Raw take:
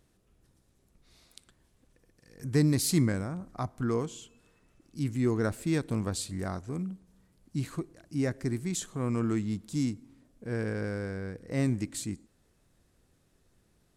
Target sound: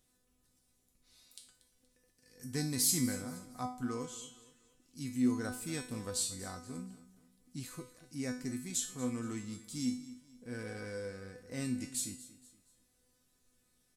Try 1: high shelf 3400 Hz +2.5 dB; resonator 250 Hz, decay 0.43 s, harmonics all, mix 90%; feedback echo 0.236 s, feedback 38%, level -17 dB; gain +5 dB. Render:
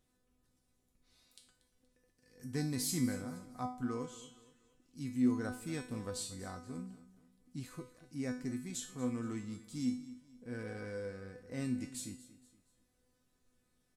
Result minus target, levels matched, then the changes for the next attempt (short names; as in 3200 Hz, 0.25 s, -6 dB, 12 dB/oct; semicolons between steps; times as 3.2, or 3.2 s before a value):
8000 Hz band -5.5 dB
change: high shelf 3400 Hz +12 dB